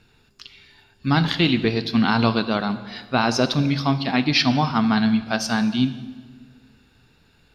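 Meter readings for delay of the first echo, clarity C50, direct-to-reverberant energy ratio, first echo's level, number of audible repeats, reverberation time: no echo audible, 13.0 dB, 11.0 dB, no echo audible, no echo audible, 1.4 s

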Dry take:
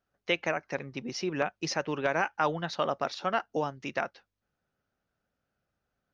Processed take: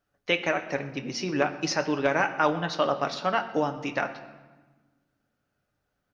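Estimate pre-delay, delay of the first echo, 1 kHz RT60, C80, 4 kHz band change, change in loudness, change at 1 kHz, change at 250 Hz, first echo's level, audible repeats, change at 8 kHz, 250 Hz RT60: 3 ms, 126 ms, 1.3 s, 13.5 dB, +4.0 dB, +4.0 dB, +4.0 dB, +6.0 dB, −21.5 dB, 1, can't be measured, 1.9 s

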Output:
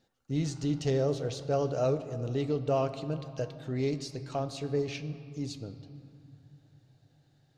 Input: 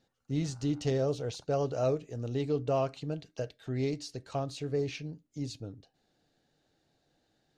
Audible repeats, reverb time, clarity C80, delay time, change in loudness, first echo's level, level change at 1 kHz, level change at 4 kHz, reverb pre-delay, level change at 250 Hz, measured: no echo audible, 2.9 s, 12.5 dB, no echo audible, +1.5 dB, no echo audible, +1.5 dB, +1.0 dB, 5 ms, +1.5 dB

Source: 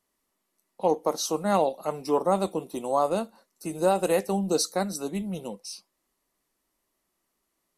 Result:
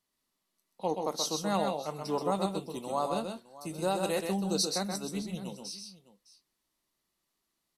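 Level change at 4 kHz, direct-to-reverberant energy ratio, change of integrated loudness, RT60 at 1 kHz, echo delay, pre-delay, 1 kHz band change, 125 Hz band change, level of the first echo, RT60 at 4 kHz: +0.5 dB, no reverb audible, −6.0 dB, no reverb audible, 129 ms, no reverb audible, −6.0 dB, −2.5 dB, −5.0 dB, no reverb audible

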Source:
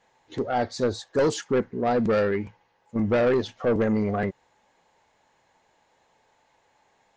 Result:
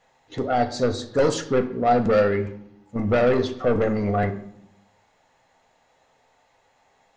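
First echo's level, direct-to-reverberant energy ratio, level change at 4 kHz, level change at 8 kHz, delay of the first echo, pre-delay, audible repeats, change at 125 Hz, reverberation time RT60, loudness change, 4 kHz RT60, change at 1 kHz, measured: no echo audible, 6.5 dB, +2.5 dB, can't be measured, no echo audible, 4 ms, no echo audible, +4.0 dB, 0.75 s, +2.5 dB, 0.55 s, +5.5 dB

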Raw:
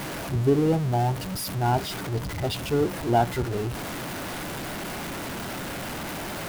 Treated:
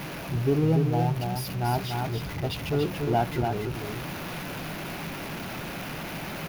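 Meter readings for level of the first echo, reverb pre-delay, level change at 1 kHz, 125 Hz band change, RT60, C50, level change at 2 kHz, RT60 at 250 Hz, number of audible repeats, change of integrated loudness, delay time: −5.0 dB, no reverb audible, −2.5 dB, 0.0 dB, no reverb audible, no reverb audible, −1.5 dB, no reverb audible, 1, −1.5 dB, 288 ms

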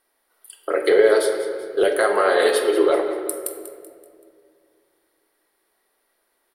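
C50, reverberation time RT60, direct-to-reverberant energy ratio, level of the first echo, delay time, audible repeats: 5.0 dB, 2.1 s, 3.5 dB, −12.5 dB, 191 ms, 4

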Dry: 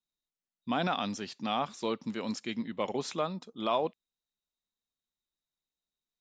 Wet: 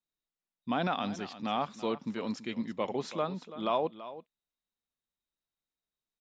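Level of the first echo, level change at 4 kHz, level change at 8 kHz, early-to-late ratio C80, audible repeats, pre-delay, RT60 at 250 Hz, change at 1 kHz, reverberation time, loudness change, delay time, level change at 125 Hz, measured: −14.5 dB, −3.0 dB, −6.5 dB, no reverb audible, 1, no reverb audible, no reverb audible, 0.0 dB, no reverb audible, −0.5 dB, 332 ms, 0.0 dB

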